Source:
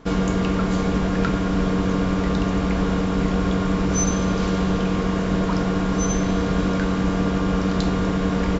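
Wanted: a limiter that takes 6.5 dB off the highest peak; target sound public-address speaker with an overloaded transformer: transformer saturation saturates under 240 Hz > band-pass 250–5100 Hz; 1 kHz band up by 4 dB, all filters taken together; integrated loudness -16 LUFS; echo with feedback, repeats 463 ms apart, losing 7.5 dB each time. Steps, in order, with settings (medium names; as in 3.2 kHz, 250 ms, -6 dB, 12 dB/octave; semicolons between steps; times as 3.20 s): peaking EQ 1 kHz +5 dB; peak limiter -13.5 dBFS; feedback delay 463 ms, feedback 42%, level -7.5 dB; transformer saturation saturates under 240 Hz; band-pass 250–5100 Hz; trim +10.5 dB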